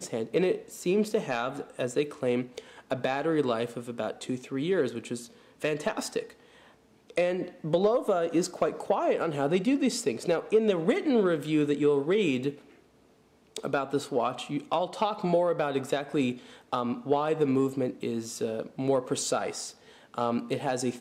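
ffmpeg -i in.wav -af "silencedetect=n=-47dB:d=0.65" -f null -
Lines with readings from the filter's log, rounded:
silence_start: 12.73
silence_end: 13.56 | silence_duration: 0.84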